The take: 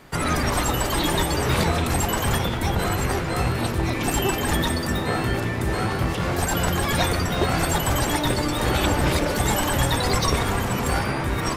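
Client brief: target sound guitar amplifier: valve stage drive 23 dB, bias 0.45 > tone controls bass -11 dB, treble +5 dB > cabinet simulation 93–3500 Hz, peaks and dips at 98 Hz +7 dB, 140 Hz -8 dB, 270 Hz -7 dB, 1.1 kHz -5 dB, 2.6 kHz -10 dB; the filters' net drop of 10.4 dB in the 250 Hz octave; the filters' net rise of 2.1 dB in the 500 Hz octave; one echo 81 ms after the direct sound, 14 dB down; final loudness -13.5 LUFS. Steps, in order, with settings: peaking EQ 250 Hz -7.5 dB; peaking EQ 500 Hz +6.5 dB; delay 81 ms -14 dB; valve stage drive 23 dB, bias 0.45; tone controls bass -11 dB, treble +5 dB; cabinet simulation 93–3500 Hz, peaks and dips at 98 Hz +7 dB, 140 Hz -8 dB, 270 Hz -7 dB, 1.1 kHz -5 dB, 2.6 kHz -10 dB; trim +17.5 dB

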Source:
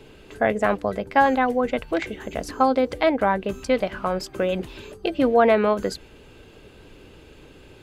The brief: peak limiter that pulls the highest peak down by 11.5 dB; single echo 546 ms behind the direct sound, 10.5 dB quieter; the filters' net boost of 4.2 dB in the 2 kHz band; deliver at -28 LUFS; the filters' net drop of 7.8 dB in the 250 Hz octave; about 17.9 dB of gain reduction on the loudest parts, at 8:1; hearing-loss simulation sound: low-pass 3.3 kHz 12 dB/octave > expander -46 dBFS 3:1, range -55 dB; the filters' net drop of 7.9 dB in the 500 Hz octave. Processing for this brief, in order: peaking EQ 250 Hz -7 dB; peaking EQ 500 Hz -9 dB; peaking EQ 2 kHz +6.5 dB; compression 8:1, threshold -32 dBFS; peak limiter -27 dBFS; low-pass 3.3 kHz 12 dB/octave; delay 546 ms -10.5 dB; expander -46 dBFS 3:1, range -55 dB; trim +12 dB

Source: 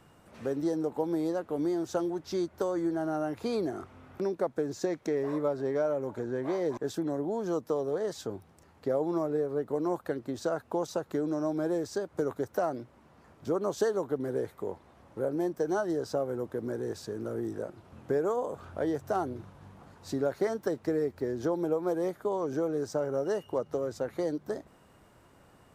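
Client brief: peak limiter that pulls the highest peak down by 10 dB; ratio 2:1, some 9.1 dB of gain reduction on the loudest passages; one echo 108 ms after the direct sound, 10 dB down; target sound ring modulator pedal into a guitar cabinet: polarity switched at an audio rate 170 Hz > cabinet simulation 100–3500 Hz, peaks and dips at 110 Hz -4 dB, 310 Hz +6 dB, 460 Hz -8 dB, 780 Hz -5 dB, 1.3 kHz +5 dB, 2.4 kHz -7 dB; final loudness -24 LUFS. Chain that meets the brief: compression 2:1, threshold -42 dBFS; peak limiter -34.5 dBFS; delay 108 ms -10 dB; polarity switched at an audio rate 170 Hz; cabinet simulation 100–3500 Hz, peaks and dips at 110 Hz -4 dB, 310 Hz +6 dB, 460 Hz -8 dB, 780 Hz -5 dB, 1.3 kHz +5 dB, 2.4 kHz -7 dB; trim +20.5 dB

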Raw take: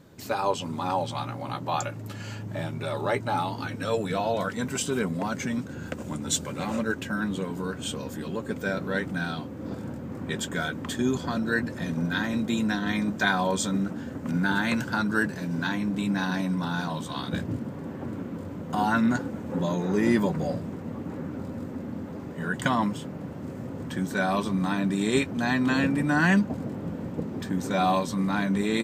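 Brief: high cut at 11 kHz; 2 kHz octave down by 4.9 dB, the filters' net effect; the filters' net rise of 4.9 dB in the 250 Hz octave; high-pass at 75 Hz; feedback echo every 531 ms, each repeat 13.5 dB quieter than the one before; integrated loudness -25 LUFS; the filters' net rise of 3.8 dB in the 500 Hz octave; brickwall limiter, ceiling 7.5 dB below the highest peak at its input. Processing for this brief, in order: high-pass 75 Hz; low-pass 11 kHz; peaking EQ 250 Hz +5.5 dB; peaking EQ 500 Hz +3.5 dB; peaking EQ 2 kHz -7.5 dB; peak limiter -14.5 dBFS; feedback delay 531 ms, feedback 21%, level -13.5 dB; trim +1 dB

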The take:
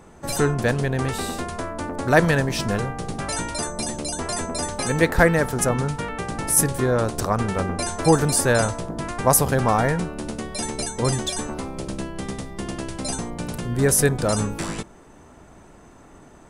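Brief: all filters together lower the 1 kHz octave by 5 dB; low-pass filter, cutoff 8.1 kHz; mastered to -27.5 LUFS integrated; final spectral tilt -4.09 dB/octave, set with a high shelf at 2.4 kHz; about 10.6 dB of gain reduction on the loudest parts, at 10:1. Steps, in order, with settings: low-pass 8.1 kHz; peaking EQ 1 kHz -7.5 dB; treble shelf 2.4 kHz +3.5 dB; compression 10:1, threshold -22 dBFS; trim +0.5 dB

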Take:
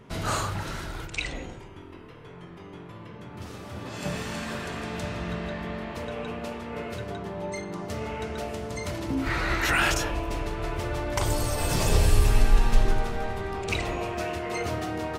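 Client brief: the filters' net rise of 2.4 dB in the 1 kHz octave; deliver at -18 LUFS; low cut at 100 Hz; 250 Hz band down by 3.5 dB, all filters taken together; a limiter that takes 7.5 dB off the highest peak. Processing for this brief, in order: high-pass 100 Hz; peaking EQ 250 Hz -5 dB; peaking EQ 1 kHz +3.5 dB; trim +13.5 dB; peak limiter -5 dBFS

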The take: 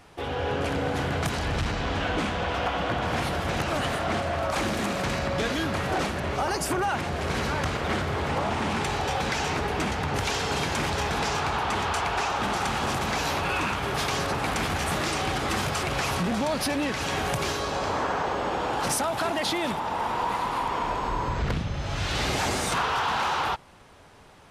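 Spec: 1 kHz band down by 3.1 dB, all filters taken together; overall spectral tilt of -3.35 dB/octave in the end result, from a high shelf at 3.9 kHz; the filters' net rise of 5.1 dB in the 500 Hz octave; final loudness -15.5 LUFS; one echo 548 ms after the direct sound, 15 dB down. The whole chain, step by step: peaking EQ 500 Hz +8.5 dB; peaking EQ 1 kHz -8 dB; treble shelf 3.9 kHz +9 dB; delay 548 ms -15 dB; trim +9.5 dB

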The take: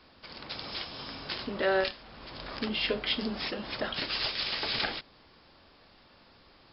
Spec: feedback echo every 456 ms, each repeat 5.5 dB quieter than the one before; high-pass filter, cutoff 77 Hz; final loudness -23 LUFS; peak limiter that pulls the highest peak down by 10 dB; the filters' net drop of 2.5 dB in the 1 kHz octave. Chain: high-pass 77 Hz; peaking EQ 1 kHz -3.5 dB; peak limiter -25 dBFS; feedback delay 456 ms, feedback 53%, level -5.5 dB; trim +12 dB

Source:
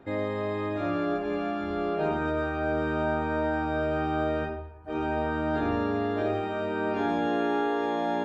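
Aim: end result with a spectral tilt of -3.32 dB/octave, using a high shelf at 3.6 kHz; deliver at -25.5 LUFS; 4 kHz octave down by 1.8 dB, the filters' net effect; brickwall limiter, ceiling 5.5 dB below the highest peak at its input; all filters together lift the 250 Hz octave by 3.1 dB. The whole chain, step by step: peaking EQ 250 Hz +4 dB; treble shelf 3.6 kHz +8.5 dB; peaking EQ 4 kHz -7.5 dB; trim +3.5 dB; peak limiter -16.5 dBFS

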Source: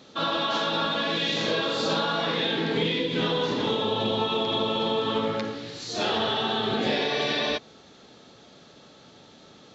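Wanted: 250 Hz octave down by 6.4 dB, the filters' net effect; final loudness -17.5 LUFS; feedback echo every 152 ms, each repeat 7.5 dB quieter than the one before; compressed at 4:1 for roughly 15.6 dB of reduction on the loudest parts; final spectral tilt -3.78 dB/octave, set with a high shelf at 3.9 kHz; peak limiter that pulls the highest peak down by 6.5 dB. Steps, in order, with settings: peaking EQ 250 Hz -8.5 dB; treble shelf 3.9 kHz -6.5 dB; compression 4:1, threshold -44 dBFS; peak limiter -35.5 dBFS; feedback delay 152 ms, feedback 42%, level -7.5 dB; trim +27 dB

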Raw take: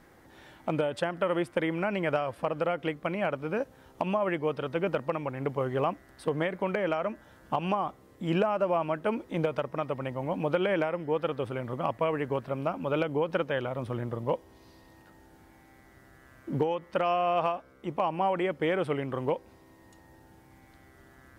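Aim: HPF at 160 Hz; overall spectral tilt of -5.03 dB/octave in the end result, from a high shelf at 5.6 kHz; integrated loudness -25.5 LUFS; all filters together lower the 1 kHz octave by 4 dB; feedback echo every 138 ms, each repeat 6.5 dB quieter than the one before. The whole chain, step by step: high-pass 160 Hz; peaking EQ 1 kHz -5.5 dB; treble shelf 5.6 kHz -3.5 dB; feedback delay 138 ms, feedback 47%, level -6.5 dB; trim +6 dB

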